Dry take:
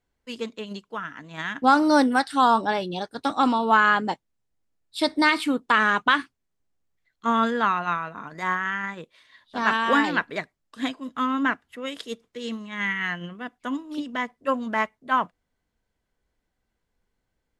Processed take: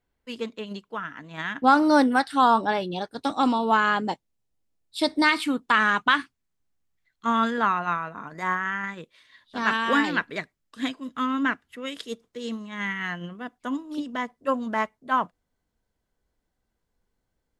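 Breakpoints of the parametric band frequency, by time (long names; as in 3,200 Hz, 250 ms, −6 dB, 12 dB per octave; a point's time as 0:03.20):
parametric band −4.5 dB 1.2 octaves
6,800 Hz
from 0:03.14 1,500 Hz
from 0:05.24 500 Hz
from 0:07.58 3,600 Hz
from 0:08.84 760 Hz
from 0:12.09 2,300 Hz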